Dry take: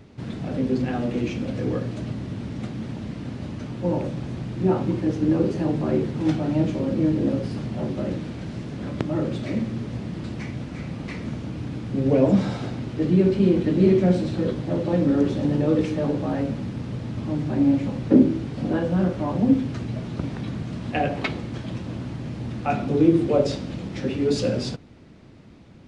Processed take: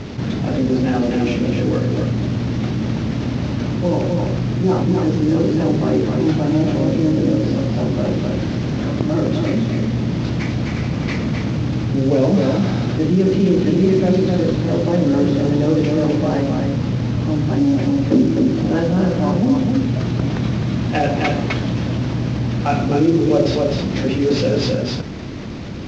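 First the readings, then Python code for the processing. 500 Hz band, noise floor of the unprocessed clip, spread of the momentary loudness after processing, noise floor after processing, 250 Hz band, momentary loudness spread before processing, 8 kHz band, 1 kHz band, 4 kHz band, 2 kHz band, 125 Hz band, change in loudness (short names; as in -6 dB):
+5.5 dB, -41 dBFS, 6 LU, -23 dBFS, +6.0 dB, 13 LU, n/a, +7.0 dB, +9.5 dB, +8.0 dB, +8.0 dB, +6.5 dB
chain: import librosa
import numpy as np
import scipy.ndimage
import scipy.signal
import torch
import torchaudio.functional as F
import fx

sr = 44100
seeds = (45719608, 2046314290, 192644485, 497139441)

y = fx.cvsd(x, sr, bps=32000)
y = y + 10.0 ** (-5.0 / 20.0) * np.pad(y, (int(258 * sr / 1000.0), 0))[:len(y)]
y = fx.env_flatten(y, sr, amount_pct=50)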